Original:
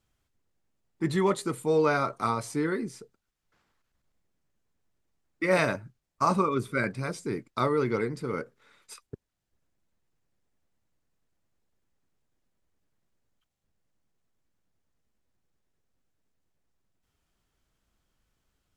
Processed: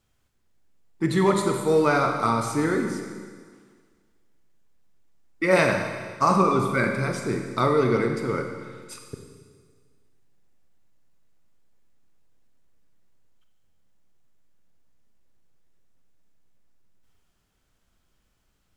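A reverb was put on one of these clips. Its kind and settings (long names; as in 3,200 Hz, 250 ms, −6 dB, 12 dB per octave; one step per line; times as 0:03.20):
four-comb reverb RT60 1.7 s, combs from 31 ms, DRR 3.5 dB
level +4 dB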